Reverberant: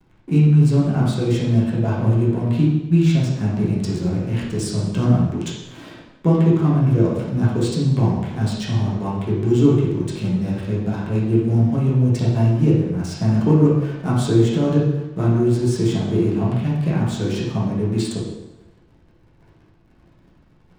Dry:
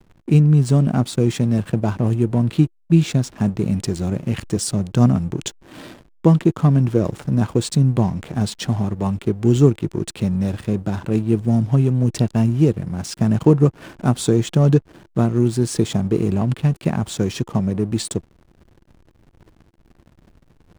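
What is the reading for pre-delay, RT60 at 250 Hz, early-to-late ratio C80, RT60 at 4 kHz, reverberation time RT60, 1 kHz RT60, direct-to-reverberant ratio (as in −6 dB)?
5 ms, 0.90 s, 4.5 dB, 0.90 s, 0.95 s, 1.0 s, −7.5 dB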